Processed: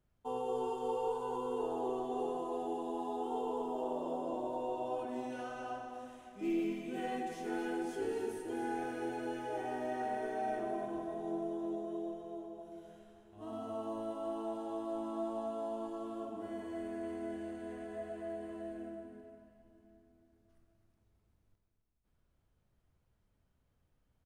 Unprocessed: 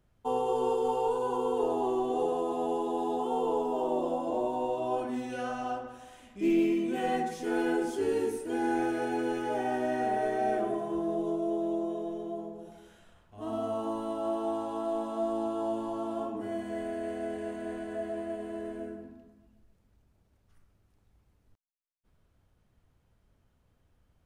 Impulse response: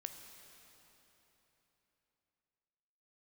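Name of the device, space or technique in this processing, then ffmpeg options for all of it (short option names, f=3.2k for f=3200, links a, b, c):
cave: -filter_complex "[0:a]asettb=1/sr,asplit=3[a][b][c];[a]atrim=end=15.874[d];[b]atrim=start=15.87:end=16.32,asetpts=PTS-STARTPTS,afade=t=in:d=0.004:c=qsin,afade=t=out:st=0.446:d=0.004:c=qsin,equalizer=f=850:t=o:w=0.3:g=-13.5[e];[c]atrim=start=16.316[f];[d][e]acrossfade=d=0.004:c1=hsin:c2=qsin[g];[g][f]acrossfade=d=0.004:c1=qsin:c2=hsin,aecho=1:1:261:0.299[h];[1:a]atrim=start_sample=2205[i];[h][i]afir=irnorm=-1:irlink=0,volume=-4.5dB"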